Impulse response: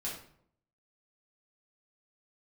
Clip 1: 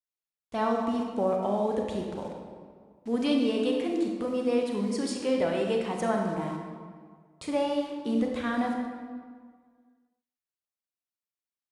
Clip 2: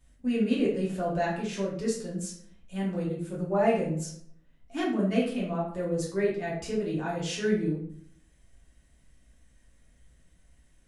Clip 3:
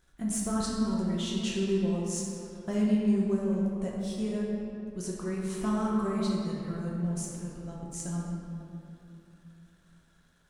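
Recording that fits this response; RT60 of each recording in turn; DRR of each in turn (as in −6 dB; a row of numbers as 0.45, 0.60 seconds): 2; 1.8, 0.65, 2.9 seconds; 1.0, −6.5, −4.0 decibels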